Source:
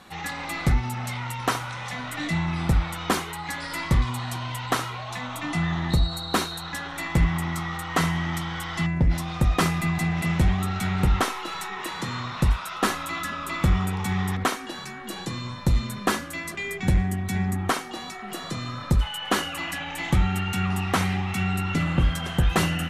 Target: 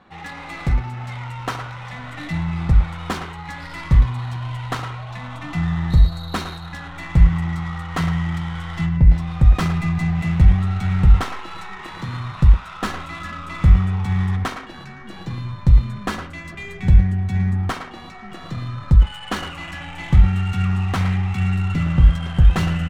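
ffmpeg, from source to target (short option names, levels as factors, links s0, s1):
-filter_complex "[0:a]asplit=2[s0][s1];[s1]adelay=110,highpass=300,lowpass=3400,asoftclip=type=hard:threshold=0.106,volume=0.501[s2];[s0][s2]amix=inputs=2:normalize=0,adynamicsmooth=sensitivity=4.5:basefreq=2400,asubboost=boost=4:cutoff=150,volume=0.841"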